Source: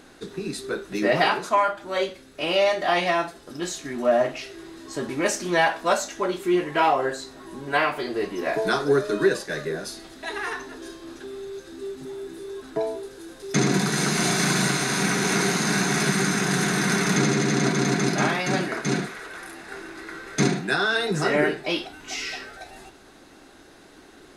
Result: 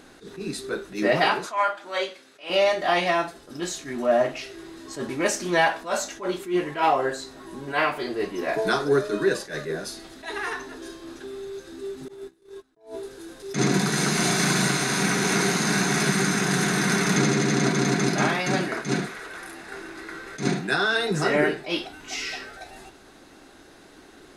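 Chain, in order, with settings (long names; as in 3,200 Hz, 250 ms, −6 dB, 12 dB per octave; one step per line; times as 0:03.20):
0:01.46–0:02.50: meter weighting curve A
0:12.08–0:12.92: noise gate −34 dBFS, range −26 dB
level that may rise only so fast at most 180 dB per second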